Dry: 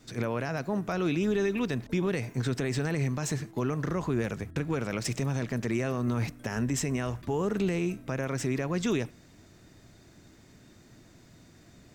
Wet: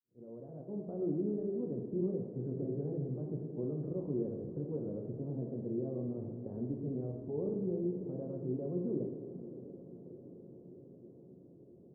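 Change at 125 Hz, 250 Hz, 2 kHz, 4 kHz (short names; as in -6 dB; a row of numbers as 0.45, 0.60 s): -9.0 dB, -6.5 dB, under -40 dB, under -40 dB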